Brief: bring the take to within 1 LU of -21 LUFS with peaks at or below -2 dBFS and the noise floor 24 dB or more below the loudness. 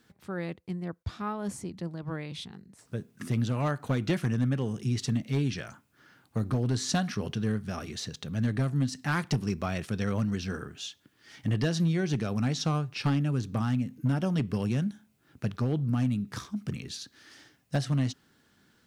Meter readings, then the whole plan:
clipped samples 0.7%; clipping level -20.0 dBFS; loudness -31.0 LUFS; peak level -20.0 dBFS; loudness target -21.0 LUFS
-> clip repair -20 dBFS; trim +10 dB

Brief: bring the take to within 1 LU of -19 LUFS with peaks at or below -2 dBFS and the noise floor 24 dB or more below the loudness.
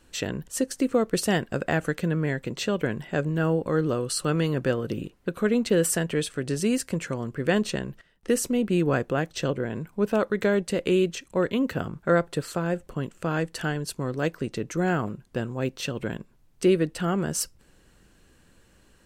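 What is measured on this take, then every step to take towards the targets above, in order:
loudness -26.5 LUFS; peak level -10.5 dBFS; loudness target -19.0 LUFS
-> trim +7.5 dB

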